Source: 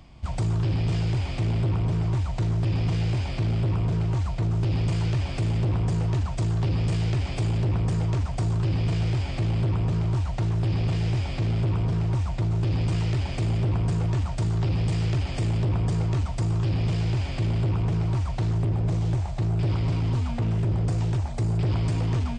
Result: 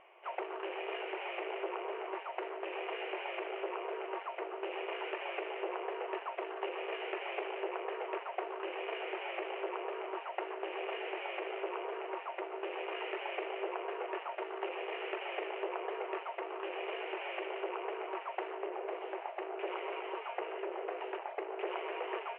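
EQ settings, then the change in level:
linear-phase brick-wall high-pass 350 Hz
Chebyshev low-pass filter 2,900 Hz, order 6
0.0 dB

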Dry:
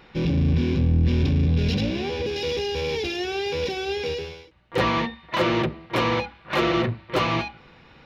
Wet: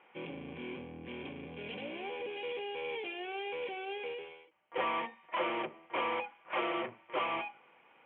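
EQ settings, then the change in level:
high-pass filter 380 Hz 12 dB per octave
Chebyshev low-pass with heavy ripple 3,300 Hz, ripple 6 dB
−7.0 dB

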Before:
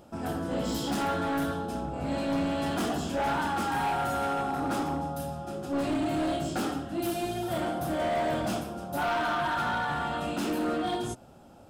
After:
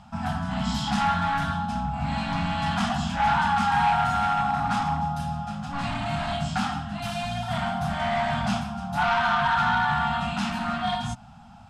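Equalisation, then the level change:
elliptic band-stop filter 220–760 Hz, stop band 50 dB
high-frequency loss of the air 93 metres
+8.5 dB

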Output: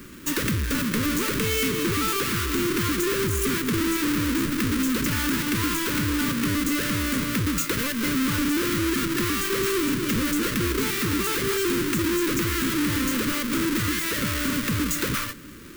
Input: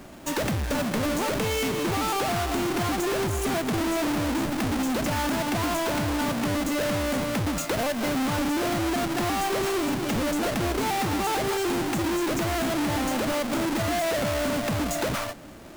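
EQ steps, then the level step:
Butterworth band-reject 720 Hz, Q 0.92
parametric band 1,000 Hz +2.5 dB 2.7 octaves
high-shelf EQ 12,000 Hz +10 dB
+2.0 dB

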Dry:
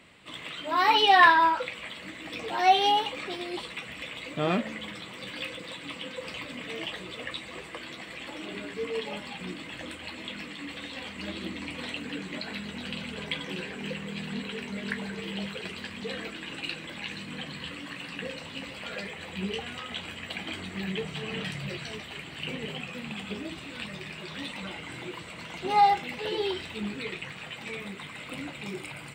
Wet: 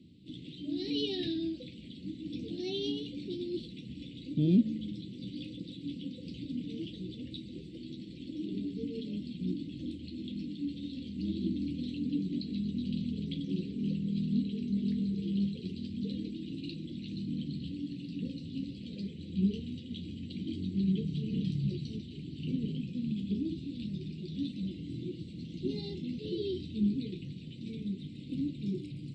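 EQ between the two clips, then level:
high-pass filter 76 Hz
Chebyshev band-stop filter 300–4,000 Hz, order 3
head-to-tape spacing loss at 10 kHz 34 dB
+7.5 dB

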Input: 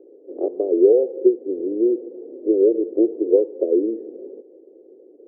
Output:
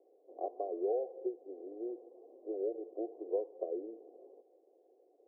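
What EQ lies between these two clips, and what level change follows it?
formant resonators in series a
high-pass filter 300 Hz 12 dB per octave
+3.5 dB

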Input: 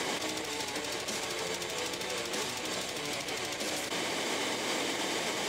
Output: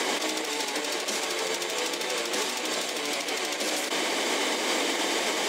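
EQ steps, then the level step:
high-pass filter 230 Hz 24 dB per octave
+6.0 dB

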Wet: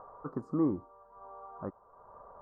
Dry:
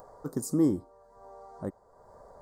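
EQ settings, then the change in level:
low-pass with resonance 1,200 Hz, resonance Q 4.6
−5.0 dB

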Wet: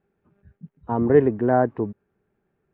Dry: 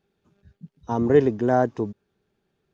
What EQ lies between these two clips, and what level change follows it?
low-pass filter 2,200 Hz 24 dB per octave
+1.0 dB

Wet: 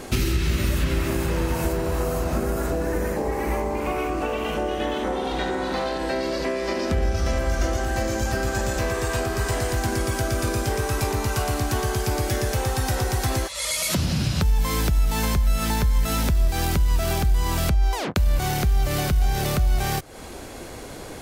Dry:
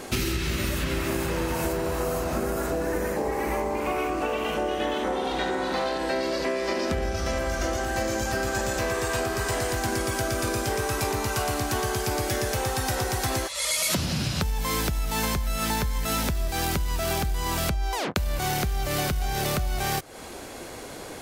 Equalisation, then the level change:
low-shelf EQ 75 Hz +5.5 dB
low-shelf EQ 260 Hz +4.5 dB
0.0 dB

